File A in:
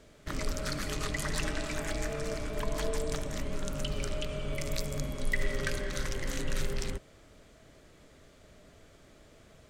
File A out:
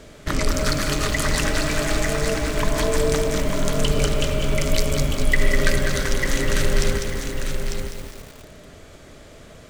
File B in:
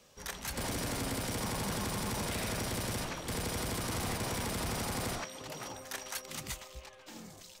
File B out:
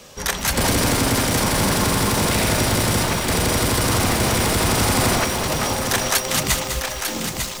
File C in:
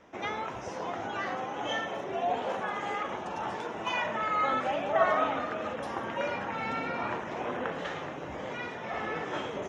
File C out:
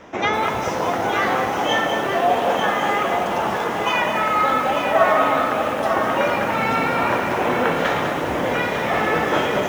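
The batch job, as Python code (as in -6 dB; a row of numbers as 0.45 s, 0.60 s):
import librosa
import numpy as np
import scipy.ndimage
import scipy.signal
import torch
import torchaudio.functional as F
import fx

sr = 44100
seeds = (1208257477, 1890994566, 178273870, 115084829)

y = fx.rider(x, sr, range_db=4, speed_s=2.0)
y = y + 10.0 ** (-6.5 / 20.0) * np.pad(y, (int(898 * sr / 1000.0), 0))[:len(y)]
y = fx.echo_crushed(y, sr, ms=201, feedback_pct=55, bits=8, wet_db=-6.5)
y = y * 10.0 ** (-20 / 20.0) / np.sqrt(np.mean(np.square(y)))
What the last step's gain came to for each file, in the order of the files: +11.0 dB, +16.0 dB, +10.5 dB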